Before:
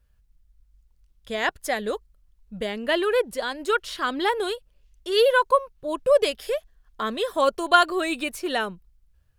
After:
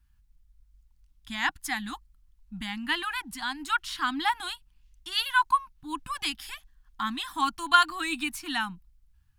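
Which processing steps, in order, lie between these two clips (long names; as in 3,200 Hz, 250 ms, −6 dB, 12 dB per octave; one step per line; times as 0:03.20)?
elliptic band-stop filter 300–810 Hz, stop band 40 dB
level −1 dB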